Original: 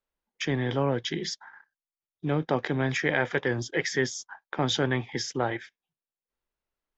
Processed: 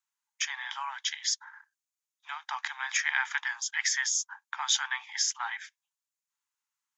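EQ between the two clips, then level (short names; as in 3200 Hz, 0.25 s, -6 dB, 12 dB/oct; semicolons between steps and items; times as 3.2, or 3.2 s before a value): steep high-pass 860 Hz 72 dB/oct; bell 6800 Hz +11 dB 0.56 oct; 0.0 dB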